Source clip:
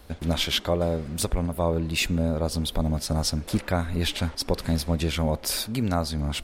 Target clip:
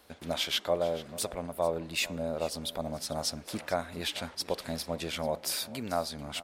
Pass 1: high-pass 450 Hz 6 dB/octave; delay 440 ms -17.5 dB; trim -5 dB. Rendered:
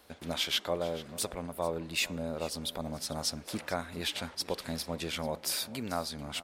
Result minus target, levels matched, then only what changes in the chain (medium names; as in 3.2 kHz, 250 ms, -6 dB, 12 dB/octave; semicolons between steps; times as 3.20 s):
500 Hz band -2.5 dB
add after high-pass: dynamic bell 640 Hz, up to +6 dB, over -41 dBFS, Q 2.5